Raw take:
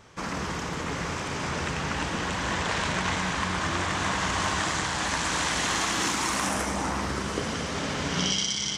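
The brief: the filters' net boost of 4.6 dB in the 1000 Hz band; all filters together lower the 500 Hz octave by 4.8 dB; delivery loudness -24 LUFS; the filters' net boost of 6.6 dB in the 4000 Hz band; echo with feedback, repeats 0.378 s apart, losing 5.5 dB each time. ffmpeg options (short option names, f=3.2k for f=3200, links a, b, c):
-af "equalizer=f=500:t=o:g=-9,equalizer=f=1k:t=o:g=7,equalizer=f=4k:t=o:g=8.5,aecho=1:1:378|756|1134|1512|1890|2268|2646:0.531|0.281|0.149|0.079|0.0419|0.0222|0.0118,volume=-1.5dB"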